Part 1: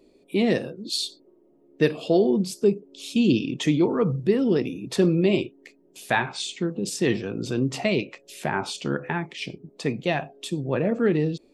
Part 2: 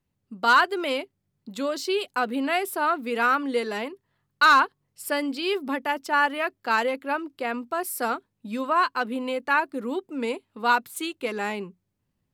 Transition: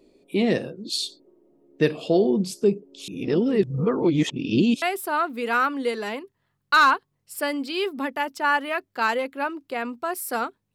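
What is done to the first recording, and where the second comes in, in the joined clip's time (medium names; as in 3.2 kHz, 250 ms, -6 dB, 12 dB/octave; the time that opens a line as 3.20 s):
part 1
3.08–4.82 s: reverse
4.82 s: go over to part 2 from 2.51 s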